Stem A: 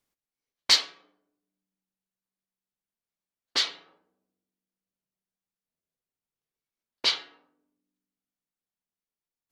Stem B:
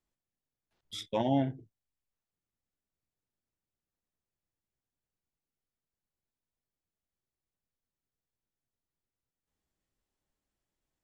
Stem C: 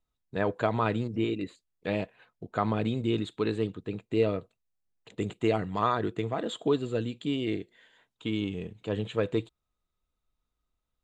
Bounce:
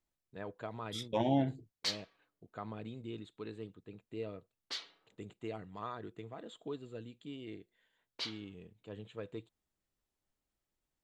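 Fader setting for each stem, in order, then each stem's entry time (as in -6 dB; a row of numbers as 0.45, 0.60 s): -16.0, -2.0, -16.0 dB; 1.15, 0.00, 0.00 s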